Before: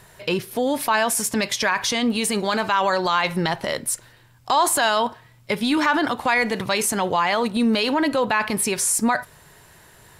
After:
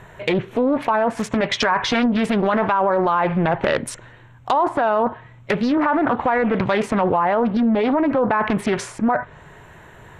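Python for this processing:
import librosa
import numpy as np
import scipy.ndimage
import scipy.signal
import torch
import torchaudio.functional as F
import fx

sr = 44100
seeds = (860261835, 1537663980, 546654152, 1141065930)

p1 = fx.wiener(x, sr, points=9)
p2 = fx.env_lowpass_down(p1, sr, base_hz=1100.0, full_db=-16.5)
p3 = fx.over_compress(p2, sr, threshold_db=-26.0, ratio=-1.0)
p4 = p2 + (p3 * 10.0 ** (0.0 / 20.0))
p5 = fx.doubler(p4, sr, ms=12.0, db=-10.0, at=(1.34, 2.06))
y = fx.doppler_dist(p5, sr, depth_ms=0.53)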